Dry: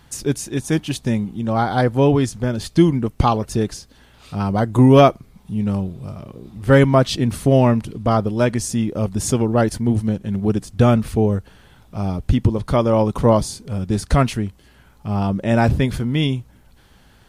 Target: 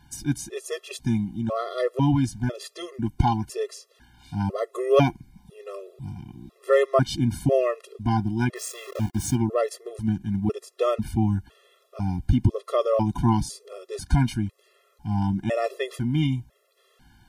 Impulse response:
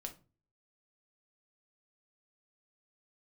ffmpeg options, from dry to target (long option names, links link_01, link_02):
-filter_complex "[0:a]asplit=3[link_01][link_02][link_03];[link_01]afade=type=out:start_time=8.55:duration=0.02[link_04];[link_02]aeval=exprs='val(0)*gte(abs(val(0)),0.0398)':channel_layout=same,afade=type=in:start_time=8.55:duration=0.02,afade=type=out:start_time=9.34:duration=0.02[link_05];[link_03]afade=type=in:start_time=9.34:duration=0.02[link_06];[link_04][link_05][link_06]amix=inputs=3:normalize=0,afftfilt=real='re*gt(sin(2*PI*1*pts/sr)*(1-2*mod(floor(b*sr/1024/350),2)),0)':imag='im*gt(sin(2*PI*1*pts/sr)*(1-2*mod(floor(b*sr/1024/350),2)),0)':win_size=1024:overlap=0.75,volume=-3.5dB"